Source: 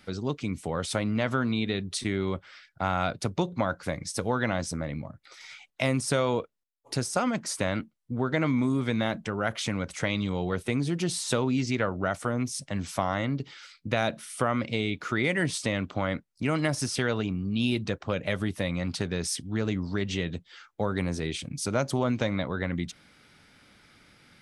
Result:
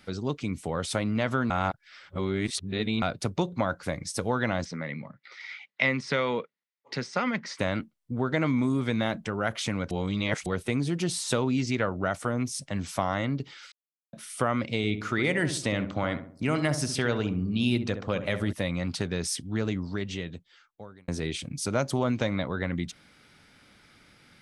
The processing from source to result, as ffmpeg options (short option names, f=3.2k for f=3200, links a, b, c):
-filter_complex "[0:a]asplit=3[a][b][c];[a]afade=t=out:st=4.64:d=0.02[d];[b]highpass=f=150:w=0.5412,highpass=f=150:w=1.3066,equalizer=f=310:t=q:w=4:g=-7,equalizer=f=680:t=q:w=4:g=-7,equalizer=f=2k:t=q:w=4:g=10,lowpass=f=5k:w=0.5412,lowpass=f=5k:w=1.3066,afade=t=in:st=4.64:d=0.02,afade=t=out:st=7.58:d=0.02[e];[c]afade=t=in:st=7.58:d=0.02[f];[d][e][f]amix=inputs=3:normalize=0,asettb=1/sr,asplit=3[g][h][i];[g]atrim=end=14.774[j];[h]atrim=start=14.77:end=18.53,asetpts=PTS-STARTPTS,afade=t=in:d=0.004:c=qsin,afade=t=out:st=3.756:d=0.004:c=qsin,asplit=2[k][l];[l]adelay=66,lowpass=f=1.1k:p=1,volume=-8dB,asplit=2[m][n];[n]adelay=66,lowpass=f=1.1k:p=1,volume=0.49,asplit=2[o][p];[p]adelay=66,lowpass=f=1.1k:p=1,volume=0.49,asplit=2[q][r];[r]adelay=66,lowpass=f=1.1k:p=1,volume=0.49,asplit=2[s][t];[t]adelay=66,lowpass=f=1.1k:p=1,volume=0.49,asplit=2[u][v];[v]adelay=66,lowpass=f=1.1k:p=1,volume=0.49[w];[k][m][o][q][s][u][w]amix=inputs=7:normalize=0,atrim=end_sample=165816[x];[i]atrim=start=18.526[y];[j][x]acrossfade=d=0.004:c1=hsin:c2=qsin[z];[z][y]acrossfade=d=0.004:c1=qsin:c2=hsin,asplit=8[aa][ab][ac][ad][ae][af][ag][ah];[aa]atrim=end=1.502[ai];[ab]atrim=start=1.498:end=3.022,asetpts=PTS-STARTPTS,areverse[aj];[ac]atrim=start=3.018:end=9.912[ak];[ad]atrim=start=9.908:end=10.462,asetpts=PTS-STARTPTS,areverse[al];[ae]atrim=start=10.458:end=13.72,asetpts=PTS-STARTPTS,afade=t=out:st=3.258:d=0.004:c=hsin[am];[af]atrim=start=13.72:end=14.13,asetpts=PTS-STARTPTS,volume=0[an];[ag]atrim=start=14.13:end=21.08,asetpts=PTS-STARTPTS,afade=t=in:d=0.004:c=hsin,afade=t=out:st=5.46:d=1.49[ao];[ah]atrim=start=21.08,asetpts=PTS-STARTPTS,afade=t=in:d=0.004:c=hsin[ap];[ai][aj]acrossfade=d=0.004:c1=hsin:c2=hsin[aq];[aq][ak]acrossfade=d=0.004:c1=hsin:c2=hsin[ar];[ar][al]acrossfade=d=0.004:c1=hsin:c2=hsin[as];[am][an][ao][ap]concat=n=4:v=0:a=1[at];[as][at]acrossfade=d=0.004:c1=hsin:c2=hsin"